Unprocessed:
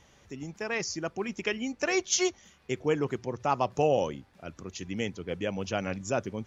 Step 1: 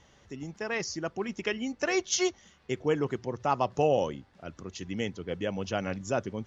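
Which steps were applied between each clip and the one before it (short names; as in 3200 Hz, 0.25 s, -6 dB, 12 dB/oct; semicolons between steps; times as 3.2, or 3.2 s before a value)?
LPF 6700 Hz 12 dB/oct; notch 2400 Hz, Q 13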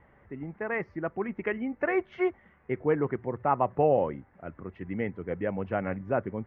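Chebyshev low-pass 2100 Hz, order 4; gain +2 dB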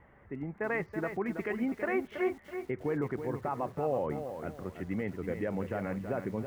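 limiter -23 dBFS, peak gain reduction 11 dB; lo-fi delay 0.327 s, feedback 35%, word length 9-bit, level -8 dB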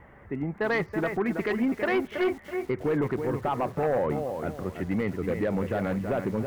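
sine folder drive 4 dB, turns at -20 dBFS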